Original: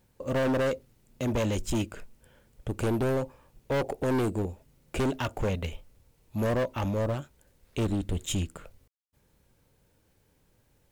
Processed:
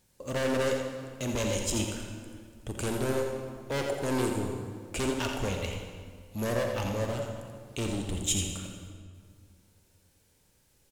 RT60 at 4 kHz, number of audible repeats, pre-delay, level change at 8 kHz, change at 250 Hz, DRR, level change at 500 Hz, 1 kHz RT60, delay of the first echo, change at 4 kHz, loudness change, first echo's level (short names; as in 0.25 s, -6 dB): 1.4 s, 1, 34 ms, +8.0 dB, -2.5 dB, 2.0 dB, -1.5 dB, 1.9 s, 85 ms, +4.5 dB, -1.5 dB, -7.5 dB